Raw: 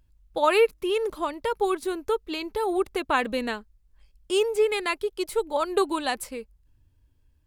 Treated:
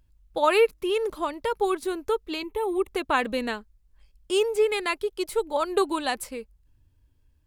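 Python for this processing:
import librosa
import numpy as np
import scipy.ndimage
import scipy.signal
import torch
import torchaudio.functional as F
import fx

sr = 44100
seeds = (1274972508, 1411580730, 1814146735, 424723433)

y = fx.fixed_phaser(x, sr, hz=1000.0, stages=8, at=(2.43, 2.88))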